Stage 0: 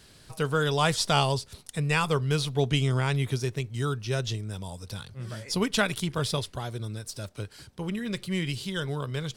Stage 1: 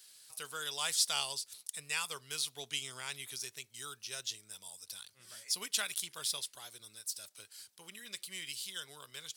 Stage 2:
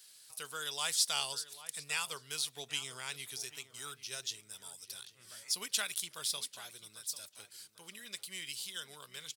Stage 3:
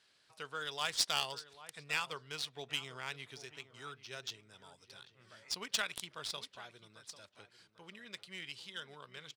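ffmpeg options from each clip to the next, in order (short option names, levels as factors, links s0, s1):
-af "aderivative,volume=1.12"
-filter_complex "[0:a]asplit=2[s0][s1];[s1]adelay=794,lowpass=f=2500:p=1,volume=0.2,asplit=2[s2][s3];[s3]adelay=794,lowpass=f=2500:p=1,volume=0.31,asplit=2[s4][s5];[s5]adelay=794,lowpass=f=2500:p=1,volume=0.31[s6];[s0][s2][s4][s6]amix=inputs=4:normalize=0"
-af "adynamicsmooth=sensitivity=3.5:basefreq=2300,volume=1.33"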